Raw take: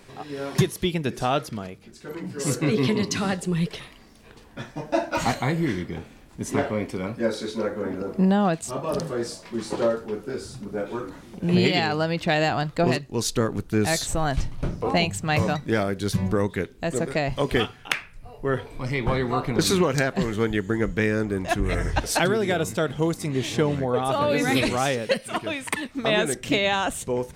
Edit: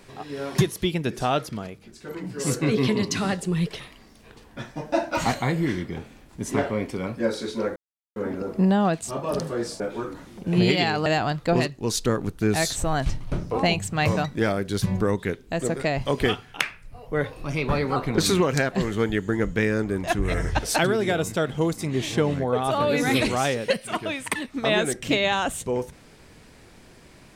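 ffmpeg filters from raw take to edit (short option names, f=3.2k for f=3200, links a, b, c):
-filter_complex "[0:a]asplit=6[a][b][c][d][e][f];[a]atrim=end=7.76,asetpts=PTS-STARTPTS,afade=t=out:st=7.756:d=0.004:c=hsin,apad=pad_dur=0.4[g];[b]atrim=start=7.76:end=9.402,asetpts=PTS-STARTPTS,afade=t=in:d=0.004:c=hsin[h];[c]atrim=start=10.758:end=12.022[i];[d]atrim=start=12.368:end=18.374[j];[e]atrim=start=18.37:end=19.37,asetpts=PTS-STARTPTS,asetrate=48951,aresample=44100[k];[f]atrim=start=19.366[l];[g][h]concat=n=2:v=0:a=1[m];[m][i]acrossfade=d=0.004:c1=hsin:c2=hsin[n];[n][j]acrossfade=d=0.004:c1=hsin:c2=hsin[o];[o][k]acrossfade=d=0.004:c1=hsin:c2=hsin[p];[p][l]acrossfade=d=0.004:c1=hsin:c2=hsin"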